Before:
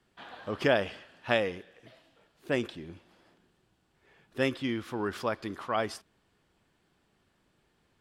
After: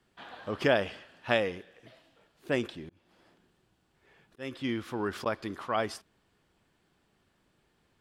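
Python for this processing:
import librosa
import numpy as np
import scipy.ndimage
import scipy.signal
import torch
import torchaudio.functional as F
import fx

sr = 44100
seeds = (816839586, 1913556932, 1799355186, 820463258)

y = fx.auto_swell(x, sr, attack_ms=331.0, at=(2.86, 5.26))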